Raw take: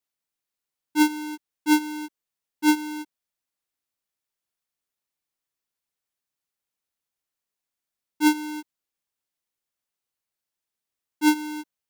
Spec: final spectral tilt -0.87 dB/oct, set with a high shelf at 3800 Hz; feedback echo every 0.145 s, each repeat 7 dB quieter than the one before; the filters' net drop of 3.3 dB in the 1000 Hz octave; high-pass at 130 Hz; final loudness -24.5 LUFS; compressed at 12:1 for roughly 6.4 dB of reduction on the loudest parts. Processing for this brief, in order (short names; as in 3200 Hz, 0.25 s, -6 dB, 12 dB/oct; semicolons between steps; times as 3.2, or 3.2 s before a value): HPF 130 Hz; bell 1000 Hz -4 dB; high shelf 3800 Hz +8.5 dB; compressor 12:1, threshold -19 dBFS; feedback echo 0.145 s, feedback 45%, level -7 dB; gain +3 dB